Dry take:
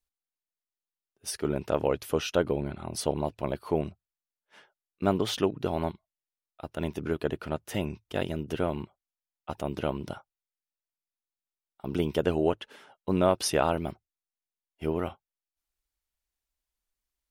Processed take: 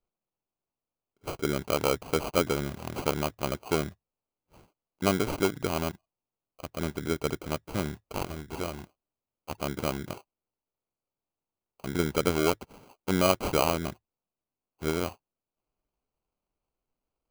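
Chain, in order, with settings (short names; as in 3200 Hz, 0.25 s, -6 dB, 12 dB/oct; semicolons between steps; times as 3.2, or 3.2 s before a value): 8–9.51 graphic EQ 125/250/500/1000/2000/4000/8000 Hz -6/-6/-5/-6/+7/+5/-6 dB; sample-rate reducer 1800 Hz, jitter 0%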